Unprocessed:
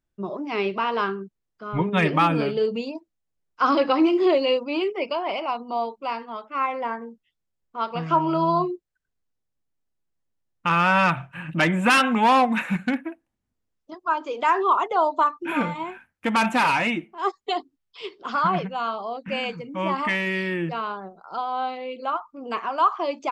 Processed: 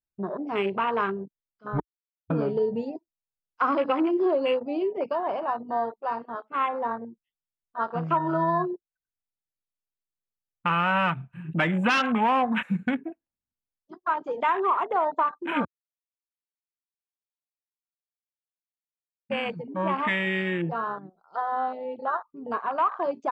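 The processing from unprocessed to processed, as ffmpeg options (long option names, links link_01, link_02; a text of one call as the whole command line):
ffmpeg -i in.wav -filter_complex "[0:a]asplit=5[link_01][link_02][link_03][link_04][link_05];[link_01]atrim=end=1.8,asetpts=PTS-STARTPTS,afade=type=out:start_time=1.796:duration=0.004:curve=hsin[link_06];[link_02]atrim=start=1.8:end=2.3,asetpts=PTS-STARTPTS,volume=0[link_07];[link_03]atrim=start=2.3:end=15.65,asetpts=PTS-STARTPTS,afade=type=in:duration=0.004:curve=hsin,afade=type=out:start_time=13.346:duration=0.004:curve=hsin[link_08];[link_04]atrim=start=15.65:end=19.3,asetpts=PTS-STARTPTS,volume=0[link_09];[link_05]atrim=start=19.3,asetpts=PTS-STARTPTS,afade=type=in:duration=0.004:curve=hsin[link_10];[link_06][link_07][link_08][link_09][link_10]concat=n=5:v=0:a=1,afwtdn=0.0355,equalizer=frequency=320:width=5:gain=-3,acompressor=threshold=-21dB:ratio=3" out.wav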